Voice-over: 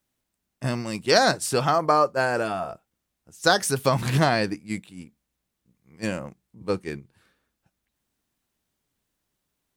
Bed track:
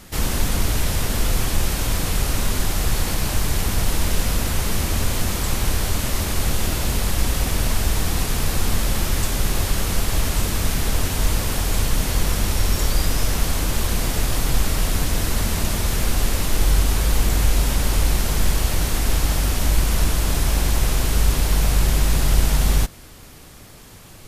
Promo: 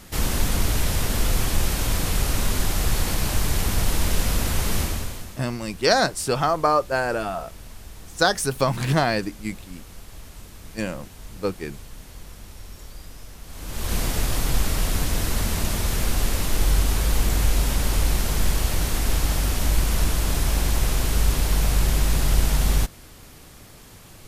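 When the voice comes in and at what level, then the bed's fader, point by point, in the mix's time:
4.75 s, 0.0 dB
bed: 4.81 s -1.5 dB
5.44 s -21 dB
13.43 s -21 dB
13.94 s -2.5 dB

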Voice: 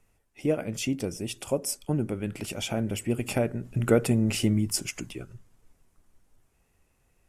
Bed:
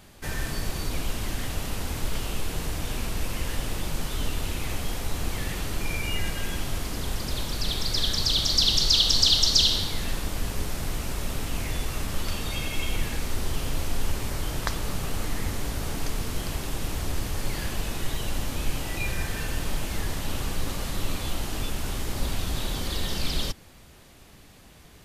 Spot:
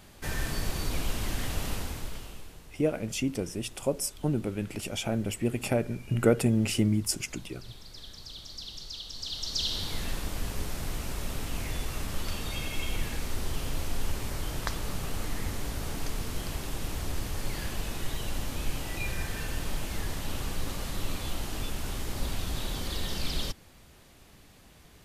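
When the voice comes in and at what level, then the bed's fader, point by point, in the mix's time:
2.35 s, -1.0 dB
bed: 1.72 s -1.5 dB
2.65 s -20.5 dB
9.12 s -20.5 dB
9.93 s -4 dB

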